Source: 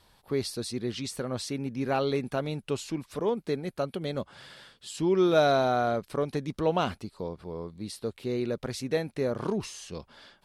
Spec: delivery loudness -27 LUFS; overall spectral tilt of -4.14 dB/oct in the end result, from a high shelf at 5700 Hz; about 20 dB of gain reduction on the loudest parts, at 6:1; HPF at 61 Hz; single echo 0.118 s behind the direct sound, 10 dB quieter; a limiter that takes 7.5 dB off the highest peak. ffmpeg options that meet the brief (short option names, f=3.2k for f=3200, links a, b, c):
-af "highpass=61,highshelf=f=5.7k:g=6.5,acompressor=threshold=-40dB:ratio=6,alimiter=level_in=11dB:limit=-24dB:level=0:latency=1,volume=-11dB,aecho=1:1:118:0.316,volume=18dB"